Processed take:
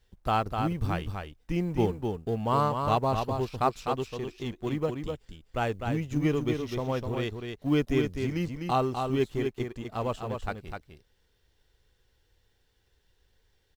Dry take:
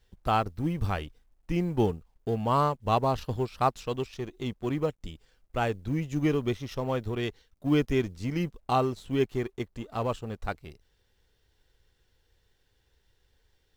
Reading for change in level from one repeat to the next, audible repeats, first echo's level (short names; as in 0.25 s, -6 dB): no steady repeat, 1, -5.5 dB